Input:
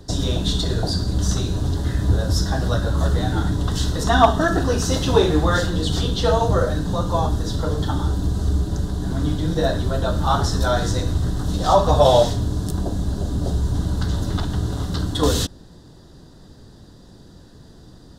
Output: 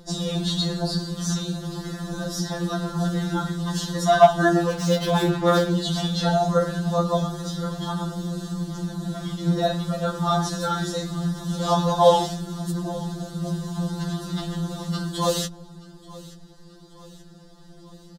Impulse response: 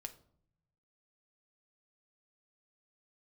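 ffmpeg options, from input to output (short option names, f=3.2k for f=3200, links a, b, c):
-filter_complex "[0:a]asettb=1/sr,asplit=3[a][b][c];[a]atrim=end=4.664[d];[b]atrim=start=4.66:end=5.71,asetpts=PTS-STARTPTS,afade=t=in:d=0.004:c=qsin,afade=t=out:st=1.046:d=0.004:c=qsin,adynamicsmooth=sensitivity=6:basefreq=880[e];[c]atrim=start=5.706[f];[d][e]acrossfade=d=0.004:c1=hsin:c2=qsin[g];[g][f]acrossfade=d=0.004:c1=qsin:c2=hsin,aecho=1:1:881|1762|2643|3524:0.0944|0.05|0.0265|0.0141,afftfilt=real='re*2.83*eq(mod(b,8),0)':imag='im*2.83*eq(mod(b,8),0)':win_size=2048:overlap=0.75"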